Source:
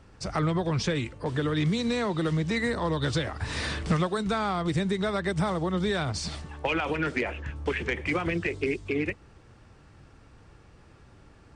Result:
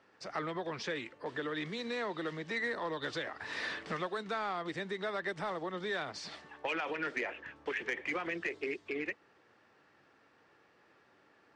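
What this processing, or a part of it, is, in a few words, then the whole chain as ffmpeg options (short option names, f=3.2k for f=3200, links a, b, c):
intercom: -af "highpass=350,lowpass=4.8k,equalizer=f=1.8k:t=o:w=0.31:g=5.5,asoftclip=type=tanh:threshold=-17.5dB,volume=-6.5dB"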